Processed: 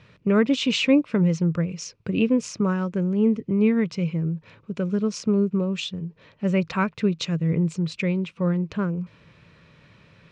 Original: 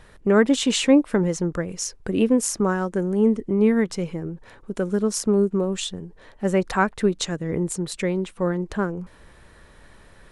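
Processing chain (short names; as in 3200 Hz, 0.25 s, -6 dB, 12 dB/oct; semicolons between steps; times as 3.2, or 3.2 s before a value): speaker cabinet 100–5600 Hz, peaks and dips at 110 Hz +10 dB, 160 Hz +10 dB, 370 Hz -4 dB, 780 Hz -10 dB, 1700 Hz -6 dB, 2500 Hz +9 dB; gain -2 dB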